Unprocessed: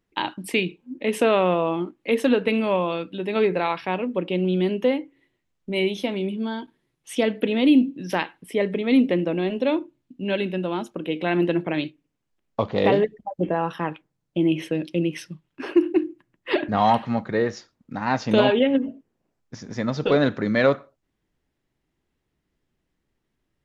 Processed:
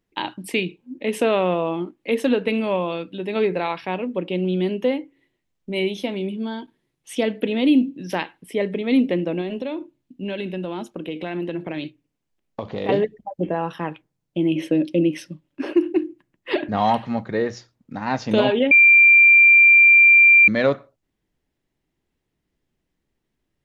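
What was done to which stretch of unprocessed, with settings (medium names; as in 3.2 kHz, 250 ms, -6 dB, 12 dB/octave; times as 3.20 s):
9.41–12.89 s: compression, threshold -23 dBFS
14.55–15.73 s: small resonant body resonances 290/560 Hz, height 11 dB
18.71–20.48 s: bleep 2.37 kHz -7.5 dBFS
whole clip: peaking EQ 1.3 kHz -3 dB 0.77 oct; hum notches 60/120 Hz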